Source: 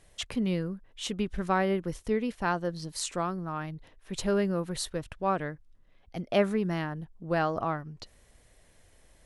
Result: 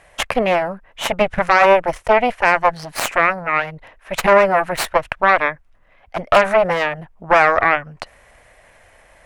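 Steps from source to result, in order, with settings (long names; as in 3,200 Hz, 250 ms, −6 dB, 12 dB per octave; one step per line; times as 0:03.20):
harmonic generator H 3 −16 dB, 4 −8 dB, 6 −7 dB, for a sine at −11 dBFS
flat-topped bell 1,200 Hz +12.5 dB 2.6 octaves
boost into a limiter +12 dB
level −1 dB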